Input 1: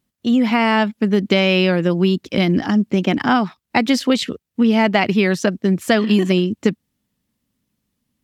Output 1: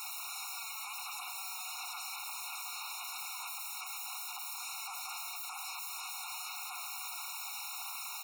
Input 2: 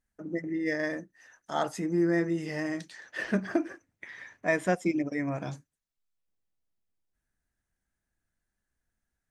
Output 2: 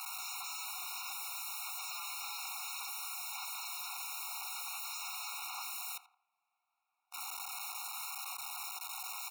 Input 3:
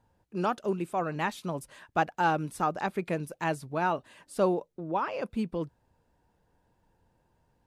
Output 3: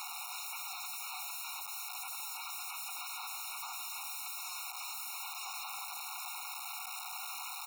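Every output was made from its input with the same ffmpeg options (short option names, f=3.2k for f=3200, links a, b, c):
-filter_complex "[0:a]aeval=exprs='val(0)+0.5*0.126*sgn(val(0))':c=same,acrossover=split=330 2700:gain=0.0891 1 0.141[a][b][c];[a][b][c]amix=inputs=3:normalize=0,bandreject=f=50:t=h:w=6,bandreject=f=100:t=h:w=6,bandreject=f=150:t=h:w=6,bandreject=f=200:t=h:w=6,bandreject=f=250:t=h:w=6,bandreject=f=300:t=h:w=6,bandreject=f=350:t=h:w=6,acompressor=threshold=-31dB:ratio=6,aeval=exprs='(tanh(22.4*val(0)+0.3)-tanh(0.3))/22.4':c=same,aeval=exprs='0.00376*sin(PI/2*1.78*val(0)/0.00376)':c=same,asplit=2[d][e];[e]adelay=84,lowpass=f=1.2k:p=1,volume=-9dB,asplit=2[f][g];[g]adelay=84,lowpass=f=1.2k:p=1,volume=0.47,asplit=2[h][i];[i]adelay=84,lowpass=f=1.2k:p=1,volume=0.47,asplit=2[j][k];[k]adelay=84,lowpass=f=1.2k:p=1,volume=0.47,asplit=2[l][m];[m]adelay=84,lowpass=f=1.2k:p=1,volume=0.47[n];[d][f][h][j][l][n]amix=inputs=6:normalize=0,afftfilt=real='re*eq(mod(floor(b*sr/1024/730),2),1)':imag='im*eq(mod(floor(b*sr/1024/730),2),1)':win_size=1024:overlap=0.75,volume=12.5dB"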